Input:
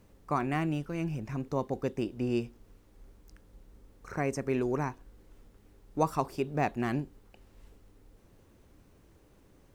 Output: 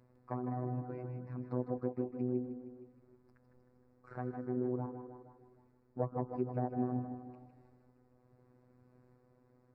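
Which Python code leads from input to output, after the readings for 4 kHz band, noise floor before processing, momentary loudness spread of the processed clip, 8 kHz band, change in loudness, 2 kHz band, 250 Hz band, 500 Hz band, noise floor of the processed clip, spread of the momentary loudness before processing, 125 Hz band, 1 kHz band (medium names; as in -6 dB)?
under -30 dB, -61 dBFS, 15 LU, under -25 dB, -6.5 dB, -19.0 dB, -5.0 dB, -6.0 dB, -69 dBFS, 7 LU, -4.5 dB, -9.5 dB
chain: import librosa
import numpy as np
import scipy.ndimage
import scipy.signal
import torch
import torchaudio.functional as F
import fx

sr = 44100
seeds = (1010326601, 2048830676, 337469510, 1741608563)

y = fx.tracing_dist(x, sr, depth_ms=0.32)
y = fx.env_lowpass_down(y, sr, base_hz=580.0, full_db=-25.5)
y = scipy.signal.sosfilt(scipy.signal.butter(4, 56.0, 'highpass', fs=sr, output='sos'), y)
y = fx.rider(y, sr, range_db=10, speed_s=2.0)
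y = fx.tremolo_random(y, sr, seeds[0], hz=3.5, depth_pct=55)
y = np.convolve(y, np.full(14, 1.0 / 14))[:len(y)]
y = fx.echo_feedback(y, sr, ms=155, feedback_pct=57, wet_db=-11.5)
y = fx.robotise(y, sr, hz=125.0)
y = fx.echo_thinned(y, sr, ms=156, feedback_pct=63, hz=230.0, wet_db=-8.5)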